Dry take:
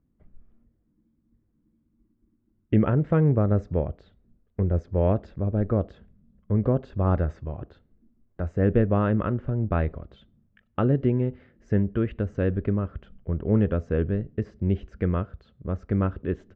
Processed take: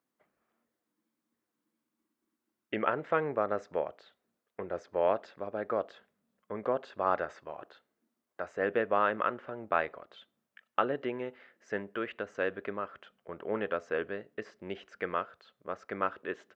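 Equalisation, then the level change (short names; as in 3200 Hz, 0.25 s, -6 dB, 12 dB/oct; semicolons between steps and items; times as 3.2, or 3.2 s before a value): HPF 800 Hz 12 dB/oct; +4.5 dB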